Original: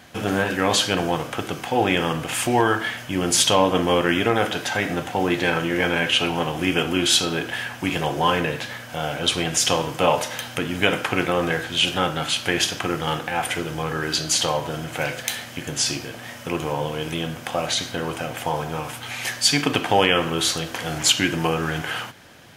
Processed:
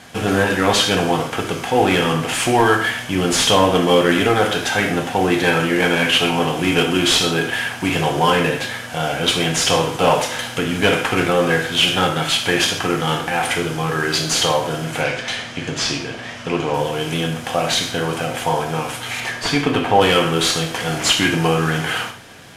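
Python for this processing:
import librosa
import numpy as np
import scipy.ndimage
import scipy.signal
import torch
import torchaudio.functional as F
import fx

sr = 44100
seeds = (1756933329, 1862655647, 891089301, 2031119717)

p1 = fx.cvsd(x, sr, bps=64000)
p2 = fx.lowpass(p1, sr, hz=5500.0, slope=12, at=(15.01, 16.74))
p3 = fx.high_shelf(p2, sr, hz=3600.0, db=-11.5, at=(19.2, 20.01))
p4 = 10.0 ** (-17.0 / 20.0) * np.tanh(p3 / 10.0 ** (-17.0 / 20.0))
p5 = p3 + F.gain(torch.from_numpy(p4), -5.0).numpy()
p6 = fx.rev_gated(p5, sr, seeds[0], gate_ms=170, shape='falling', drr_db=4.0)
y = F.gain(torch.from_numpy(p6), 1.0).numpy()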